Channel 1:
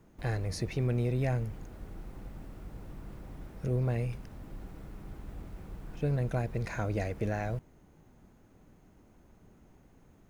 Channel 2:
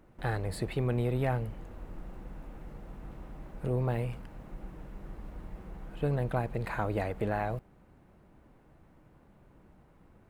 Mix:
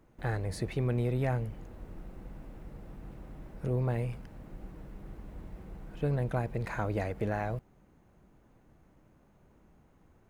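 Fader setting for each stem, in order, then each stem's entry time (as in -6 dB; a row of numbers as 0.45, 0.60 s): -8.0, -4.5 dB; 0.00, 0.00 s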